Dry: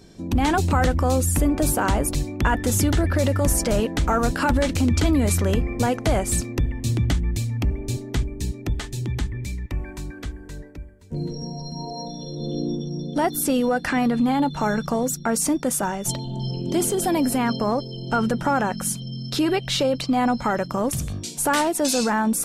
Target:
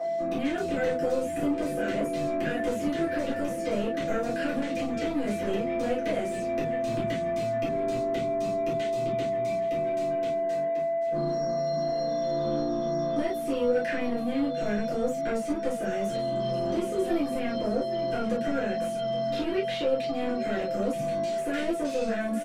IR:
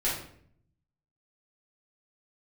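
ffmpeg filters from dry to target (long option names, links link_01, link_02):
-filter_complex "[0:a]asuperstop=centerf=1000:order=12:qfactor=1.3,aeval=exprs='val(0)+0.0355*sin(2*PI*670*n/s)':channel_layout=same,highpass=frequency=180:width=0.5412,highpass=frequency=180:width=1.3066,acompressor=threshold=-26dB:ratio=6,highshelf=frequency=5500:gain=-6,asoftclip=type=tanh:threshold=-25.5dB,asettb=1/sr,asplit=3[link_01][link_02][link_03];[link_01]atrim=end=7.934[link_04];[link_02]atrim=start=7.93:end=10.45,asetpts=PTS-STARTPTS,afade=type=in:duration=0.004:curve=qsin,afade=type=out:start_time=2.516:duration=0.004:curve=qsin,equalizer=frequency=1700:width=7.5:gain=-12.5[link_05];[link_03]atrim=start=10.446[link_06];[link_04][link_05]acrossfade=duration=0.004:curve1=hsin:curve2=qsin[link_07];[link_07][link_06]acrossfade=duration=0.004:curve1=qsin:curve2=hsin[link_08];[1:a]atrim=start_sample=2205,atrim=end_sample=3969,asetrate=61740,aresample=44100[link_09];[link_08][link_09]afir=irnorm=-1:irlink=0,acrossover=split=3000[link_10][link_11];[link_11]acompressor=threshold=-47dB:ratio=4:attack=1:release=60[link_12];[link_10][link_12]amix=inputs=2:normalize=0,aecho=1:1:824:0.188,volume=-1.5dB"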